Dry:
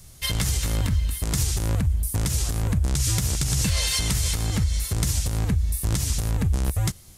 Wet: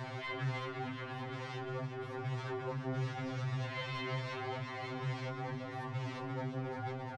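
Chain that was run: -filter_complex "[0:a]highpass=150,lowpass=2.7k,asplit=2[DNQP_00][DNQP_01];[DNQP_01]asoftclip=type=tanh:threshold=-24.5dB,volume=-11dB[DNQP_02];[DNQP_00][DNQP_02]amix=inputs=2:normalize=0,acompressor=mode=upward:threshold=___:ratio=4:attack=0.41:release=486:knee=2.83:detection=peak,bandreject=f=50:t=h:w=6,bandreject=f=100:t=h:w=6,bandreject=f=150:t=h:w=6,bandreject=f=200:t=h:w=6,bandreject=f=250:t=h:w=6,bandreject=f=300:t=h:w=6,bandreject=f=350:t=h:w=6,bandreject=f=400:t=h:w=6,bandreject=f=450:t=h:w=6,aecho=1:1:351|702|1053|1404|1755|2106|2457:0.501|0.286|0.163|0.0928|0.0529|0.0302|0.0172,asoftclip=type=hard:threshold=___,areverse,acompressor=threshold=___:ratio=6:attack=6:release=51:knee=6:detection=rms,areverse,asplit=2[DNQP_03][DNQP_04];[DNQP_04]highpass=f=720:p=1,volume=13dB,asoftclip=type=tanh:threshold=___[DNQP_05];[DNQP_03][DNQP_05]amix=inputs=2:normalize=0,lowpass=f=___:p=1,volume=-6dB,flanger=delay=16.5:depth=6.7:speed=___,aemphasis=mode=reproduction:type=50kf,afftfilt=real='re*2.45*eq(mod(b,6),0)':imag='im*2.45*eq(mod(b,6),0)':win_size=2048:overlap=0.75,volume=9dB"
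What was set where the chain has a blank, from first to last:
-30dB, -21dB, -40dB, -30.5dB, 1.3k, 0.85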